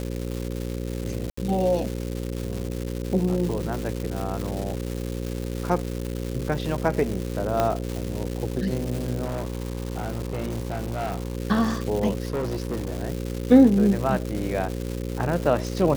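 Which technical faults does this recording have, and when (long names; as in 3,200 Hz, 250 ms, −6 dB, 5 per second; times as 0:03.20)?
mains buzz 60 Hz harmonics 9 −30 dBFS
surface crackle 400 per second −28 dBFS
0:01.30–0:01.37: drop-out 74 ms
0:07.60: click −9 dBFS
0:09.24–0:11.37: clipping −24 dBFS
0:12.25–0:13.03: clipping −23 dBFS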